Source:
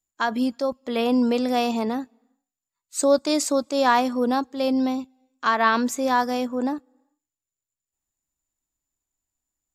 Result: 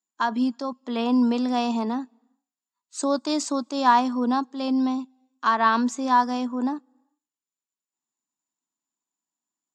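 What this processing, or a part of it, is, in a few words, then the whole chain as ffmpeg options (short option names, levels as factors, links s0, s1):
television speaker: -af "highpass=f=180:w=0.5412,highpass=f=180:w=1.3066,equalizer=f=240:t=q:w=4:g=4,equalizer=f=530:t=q:w=4:g=-7,equalizer=f=1000:t=q:w=4:g=7,equalizer=f=2200:t=q:w=4:g=-6,lowpass=f=7600:w=0.5412,lowpass=f=7600:w=1.3066,volume=0.75"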